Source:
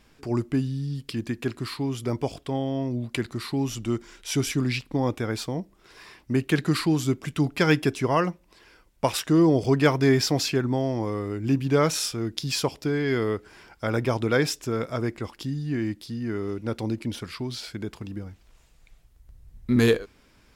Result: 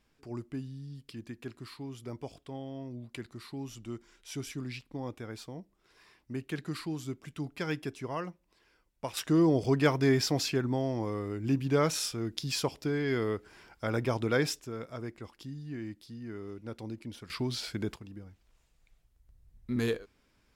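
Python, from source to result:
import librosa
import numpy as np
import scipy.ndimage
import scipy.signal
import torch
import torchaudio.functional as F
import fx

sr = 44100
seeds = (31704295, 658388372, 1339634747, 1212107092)

y = fx.gain(x, sr, db=fx.steps((0.0, -13.5), (9.17, -5.5), (14.6, -12.0), (17.3, -1.0), (17.96, -11.0)))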